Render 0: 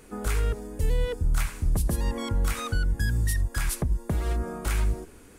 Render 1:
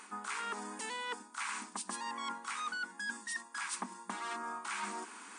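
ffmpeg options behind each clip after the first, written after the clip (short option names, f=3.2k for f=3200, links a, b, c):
-af "afftfilt=real='re*between(b*sr/4096,190,9700)':imag='im*between(b*sr/4096,190,9700)':win_size=4096:overlap=0.75,lowshelf=f=720:t=q:w=3:g=-10.5,areverse,acompressor=threshold=-42dB:ratio=12,areverse,volume=5.5dB"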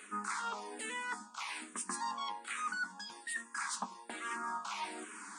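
-filter_complex "[0:a]flanger=delay=9.4:depth=4.3:regen=45:speed=0.4:shape=sinusoidal,asplit=2[a][b];[b]asoftclip=type=tanh:threshold=-36.5dB,volume=-9dB[c];[a][c]amix=inputs=2:normalize=0,asplit=2[d][e];[e]afreqshift=-1.2[f];[d][f]amix=inputs=2:normalize=1,volume=4.5dB"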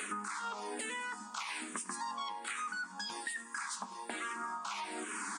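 -af "alimiter=level_in=11.5dB:limit=-24dB:level=0:latency=1:release=460,volume=-11.5dB,acompressor=threshold=-51dB:ratio=6,aecho=1:1:101|202|303|404|505:0.0891|0.0517|0.03|0.0174|0.0101,volume=13.5dB"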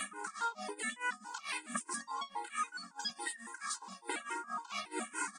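-af "tremolo=f=4.6:d=0.92,afftfilt=real='re*gt(sin(2*PI*3.6*pts/sr)*(1-2*mod(floor(b*sr/1024/270),2)),0)':imag='im*gt(sin(2*PI*3.6*pts/sr)*(1-2*mod(floor(b*sr/1024/270),2)),0)':win_size=1024:overlap=0.75,volume=7.5dB"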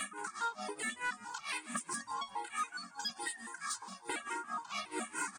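-filter_complex "[0:a]asoftclip=type=tanh:threshold=-27.5dB,asplit=4[a][b][c][d];[b]adelay=175,afreqshift=-62,volume=-18.5dB[e];[c]adelay=350,afreqshift=-124,volume=-27.9dB[f];[d]adelay=525,afreqshift=-186,volume=-37.2dB[g];[a][e][f][g]amix=inputs=4:normalize=0,volume=1dB"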